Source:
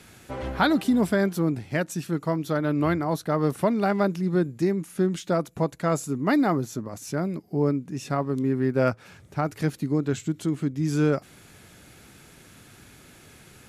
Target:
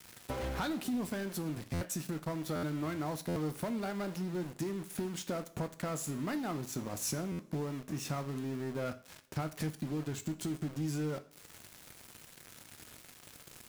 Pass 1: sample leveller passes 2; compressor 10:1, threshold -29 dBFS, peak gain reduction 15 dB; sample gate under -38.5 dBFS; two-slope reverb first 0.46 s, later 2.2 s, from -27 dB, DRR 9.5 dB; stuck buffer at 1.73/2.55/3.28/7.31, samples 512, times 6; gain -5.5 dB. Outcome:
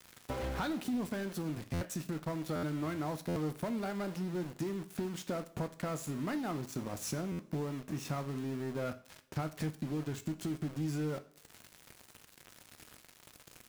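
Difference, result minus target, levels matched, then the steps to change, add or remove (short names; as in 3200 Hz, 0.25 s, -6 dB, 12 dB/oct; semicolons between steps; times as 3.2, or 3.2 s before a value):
8000 Hz band -4.0 dB
add after compressor: high shelf 5300 Hz +6.5 dB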